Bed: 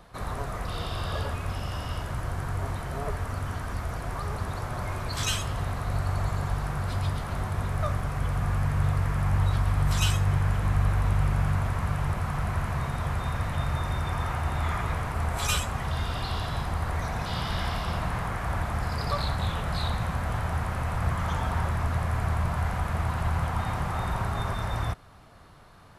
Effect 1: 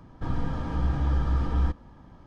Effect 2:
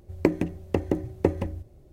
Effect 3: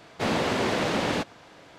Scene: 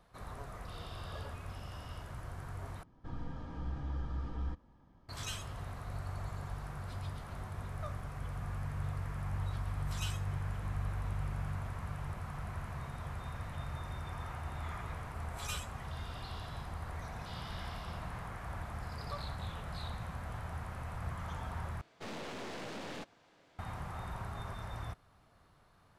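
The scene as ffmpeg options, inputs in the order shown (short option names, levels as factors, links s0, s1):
-filter_complex "[0:a]volume=0.224[s0];[3:a]aeval=exprs='(tanh(25.1*val(0)+0.65)-tanh(0.65))/25.1':c=same[s1];[s0]asplit=3[s2][s3][s4];[s2]atrim=end=2.834[s5];[1:a]atrim=end=2.26,asetpts=PTS-STARTPTS,volume=0.211[s6];[s3]atrim=start=5.086:end=21.814[s7];[s1]atrim=end=1.78,asetpts=PTS-STARTPTS,volume=0.251[s8];[s4]atrim=start=23.586[s9];[s5][s6]acrossfade=d=0.004:c1=hsin:c2=hsin[s10];[s10][s7]acrossfade=d=0.004:c1=hsin:c2=hsin[s11];[s11][s8]acrossfade=d=0.004:c1=hsin:c2=hsin[s12];[s12][s9]acrossfade=d=0.004:c1=hsin:c2=hsin"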